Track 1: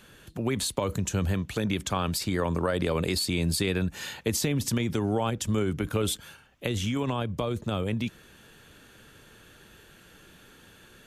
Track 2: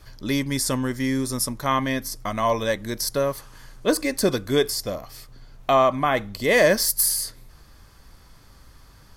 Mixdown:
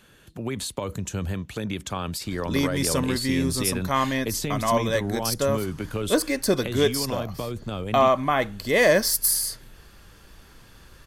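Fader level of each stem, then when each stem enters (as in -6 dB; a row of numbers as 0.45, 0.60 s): -2.0, -1.0 dB; 0.00, 2.25 s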